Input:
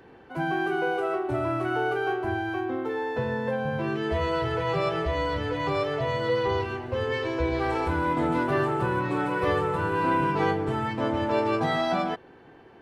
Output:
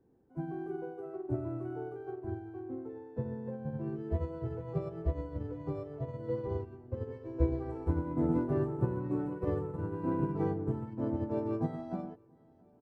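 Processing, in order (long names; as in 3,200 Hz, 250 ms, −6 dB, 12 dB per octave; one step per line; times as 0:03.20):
drawn EQ curve 280 Hz 0 dB, 3,300 Hz −28 dB, 7,400 Hz −18 dB
on a send: repeating echo 684 ms, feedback 56%, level −19.5 dB
on the sum: expander for the loud parts 2.5 to 1, over −36 dBFS
level +3 dB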